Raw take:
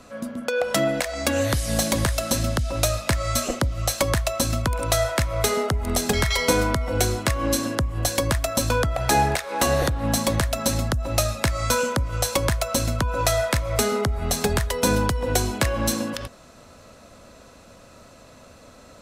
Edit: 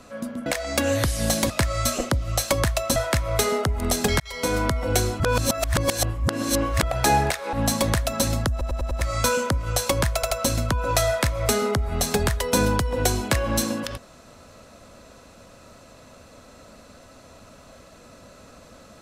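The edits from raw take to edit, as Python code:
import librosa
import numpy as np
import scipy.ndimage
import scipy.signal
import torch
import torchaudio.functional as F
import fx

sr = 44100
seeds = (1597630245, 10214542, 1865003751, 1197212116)

y = fx.edit(x, sr, fx.cut(start_s=0.46, length_s=0.49),
    fx.cut(start_s=1.99, length_s=1.01),
    fx.cut(start_s=4.46, length_s=0.55),
    fx.fade_in_span(start_s=6.25, length_s=0.47),
    fx.reverse_span(start_s=7.25, length_s=1.63),
    fx.cut(start_s=9.58, length_s=0.41),
    fx.stutter_over(start_s=10.97, slice_s=0.1, count=5),
    fx.stutter(start_s=12.61, slice_s=0.08, count=3), tone=tone)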